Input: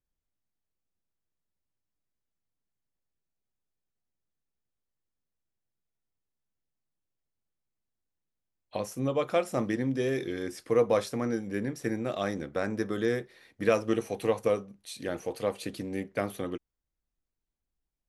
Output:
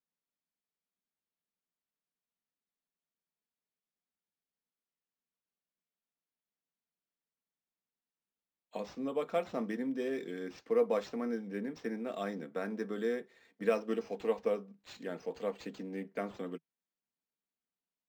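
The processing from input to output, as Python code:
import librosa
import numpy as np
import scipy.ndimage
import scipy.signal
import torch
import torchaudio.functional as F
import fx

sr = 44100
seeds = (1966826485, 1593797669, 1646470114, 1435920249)

y = scipy.signal.sosfilt(scipy.signal.ellip(4, 1.0, 40, 160.0, 'highpass', fs=sr, output='sos'), x)
y = y + 0.42 * np.pad(y, (int(4.4 * sr / 1000.0), 0))[:len(y)]
y = np.interp(np.arange(len(y)), np.arange(len(y))[::4], y[::4])
y = F.gain(torch.from_numpy(y), -6.5).numpy()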